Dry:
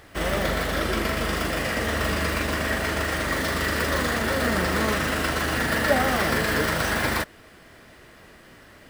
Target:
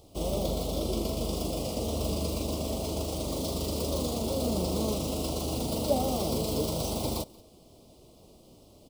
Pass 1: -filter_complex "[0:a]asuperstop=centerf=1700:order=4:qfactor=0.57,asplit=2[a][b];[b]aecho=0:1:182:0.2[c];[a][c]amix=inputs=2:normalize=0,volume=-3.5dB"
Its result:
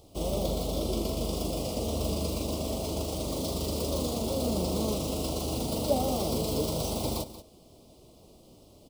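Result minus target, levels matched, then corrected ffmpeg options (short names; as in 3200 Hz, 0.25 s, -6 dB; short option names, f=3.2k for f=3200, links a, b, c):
echo-to-direct +9.5 dB
-filter_complex "[0:a]asuperstop=centerf=1700:order=4:qfactor=0.57,asplit=2[a][b];[b]aecho=0:1:182:0.0668[c];[a][c]amix=inputs=2:normalize=0,volume=-3.5dB"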